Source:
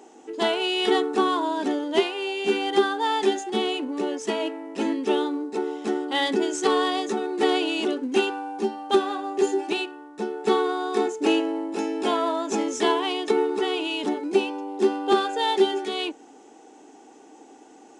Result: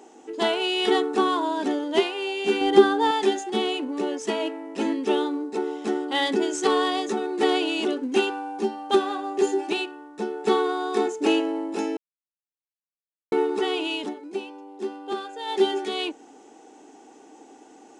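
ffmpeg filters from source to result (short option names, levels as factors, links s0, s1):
-filter_complex "[0:a]asettb=1/sr,asplit=3[s0][s1][s2];[s0]atrim=end=2.614[s3];[s1]atrim=start=2.61:end=3.11,asetpts=PTS-STARTPTS,afade=t=in:d=0.004:c=qsin,afade=t=out:st=0.496:d=0.004:c=qsin,lowshelf=f=440:g=11.5[s4];[s2]atrim=start=3.106[s5];[s3][s4]acrossfade=d=0.004:c1=hsin:c2=qsin[s6];[s6][s5]acrossfade=d=0.004:c1=qsin:c2=hsin,asplit=5[s7][s8][s9][s10][s11];[s7]atrim=end=11.97,asetpts=PTS-STARTPTS,afade=t=out:st=11.966:d=0.004:c=hsin[s12];[s8]atrim=start=11.97:end=13.32,asetpts=PTS-STARTPTS,volume=0[s13];[s9]atrim=start=13.32:end=14.14,asetpts=PTS-STARTPTS,afade=t=in:d=0.004:c=hsin,afade=t=out:st=0.62:d=0.2:silence=0.316228[s14];[s10]atrim=start=14.14:end=15.45,asetpts=PTS-STARTPTS,volume=0.316[s15];[s11]atrim=start=15.45,asetpts=PTS-STARTPTS,afade=t=in:d=0.2:silence=0.316228[s16];[s12][s13][s14][s15][s16]concat=n=5:v=0:a=1"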